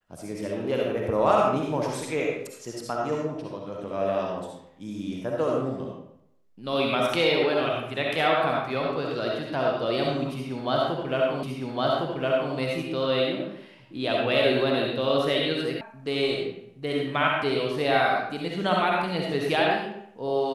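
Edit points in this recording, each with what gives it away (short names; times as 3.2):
11.43 repeat of the last 1.11 s
15.81 sound cut off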